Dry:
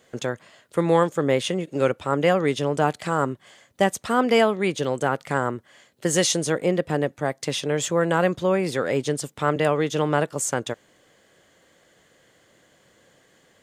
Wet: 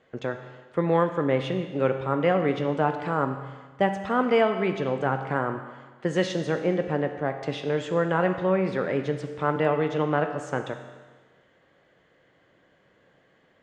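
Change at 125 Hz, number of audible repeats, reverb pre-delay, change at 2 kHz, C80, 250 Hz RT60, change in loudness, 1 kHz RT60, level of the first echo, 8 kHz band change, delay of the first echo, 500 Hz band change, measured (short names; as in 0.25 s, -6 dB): -1.5 dB, none, 6 ms, -3.0 dB, 10.0 dB, 1.4 s, -3.0 dB, 1.4 s, none, under -20 dB, none, -2.5 dB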